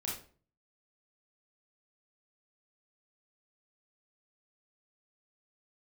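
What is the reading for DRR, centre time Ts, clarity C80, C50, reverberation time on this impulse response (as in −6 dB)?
−5.0 dB, 40 ms, 10.5 dB, 3.5 dB, 0.45 s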